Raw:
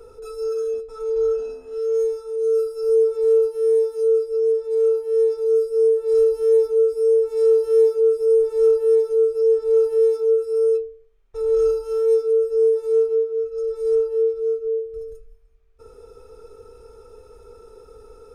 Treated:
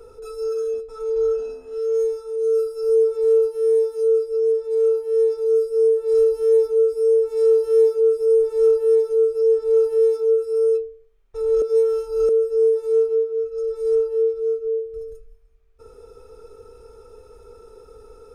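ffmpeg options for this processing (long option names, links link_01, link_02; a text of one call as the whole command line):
ffmpeg -i in.wav -filter_complex "[0:a]asplit=3[link_01][link_02][link_03];[link_01]atrim=end=11.622[link_04];[link_02]atrim=start=11.618:end=12.292,asetpts=PTS-STARTPTS,areverse[link_05];[link_03]atrim=start=12.288[link_06];[link_04][link_05]acrossfade=duration=0.004:curve1=hsin:curve2=hsin[link_07];[link_07][link_06]acrossfade=duration=0.004:curve1=hsin:curve2=hsin" out.wav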